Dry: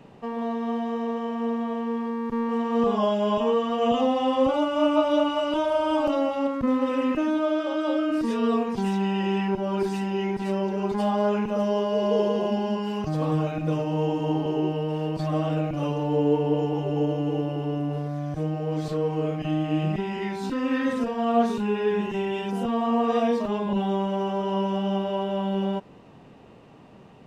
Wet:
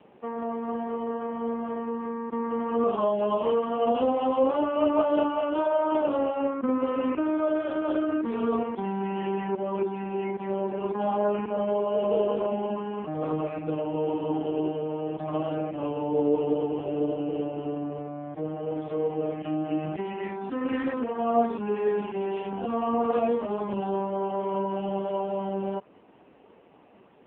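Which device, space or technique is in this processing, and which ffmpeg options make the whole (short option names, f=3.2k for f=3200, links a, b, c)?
telephone: -af "highpass=270,lowpass=3.3k" -ar 8000 -c:a libopencore_amrnb -b:a 5150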